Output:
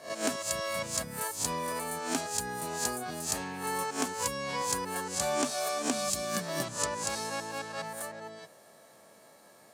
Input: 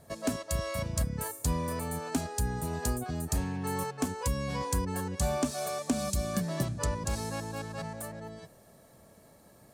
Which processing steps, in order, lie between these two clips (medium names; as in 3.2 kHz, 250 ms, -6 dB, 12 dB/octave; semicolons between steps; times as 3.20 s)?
reverse spectral sustain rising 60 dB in 0.36 s; frequency weighting A; trim +3 dB